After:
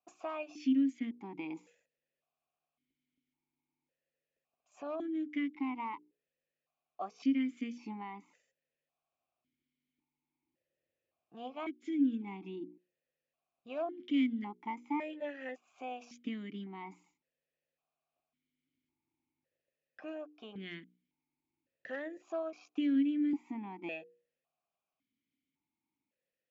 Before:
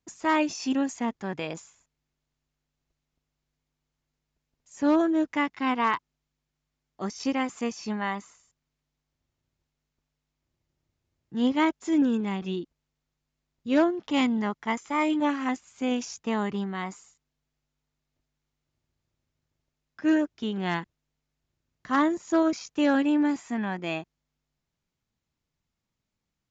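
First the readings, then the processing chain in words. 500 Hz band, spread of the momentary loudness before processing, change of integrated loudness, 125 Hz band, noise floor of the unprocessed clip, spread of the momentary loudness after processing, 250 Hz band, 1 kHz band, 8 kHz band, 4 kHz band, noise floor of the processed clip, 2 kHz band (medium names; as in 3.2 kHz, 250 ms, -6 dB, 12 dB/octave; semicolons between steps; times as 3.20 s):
-12.5 dB, 10 LU, -10.0 dB, under -10 dB, -84 dBFS, 15 LU, -9.0 dB, -14.5 dB, no reading, -14.5 dB, under -85 dBFS, -14.5 dB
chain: hum notches 60/120/180/240/300/360/420/480 Hz; compression 2.5:1, threshold -37 dBFS, peak gain reduction 13 dB; stepped vowel filter 1.8 Hz; trim +8 dB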